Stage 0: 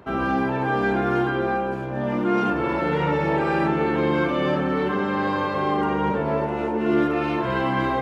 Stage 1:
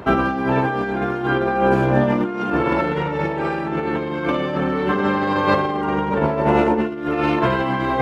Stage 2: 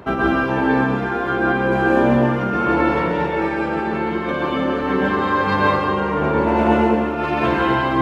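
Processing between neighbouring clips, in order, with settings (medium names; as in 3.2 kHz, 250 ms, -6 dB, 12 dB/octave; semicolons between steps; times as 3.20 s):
compressor with a negative ratio -26 dBFS, ratio -0.5; trim +7.5 dB
plate-style reverb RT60 1.4 s, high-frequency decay 0.9×, pre-delay 115 ms, DRR -5 dB; trim -4.5 dB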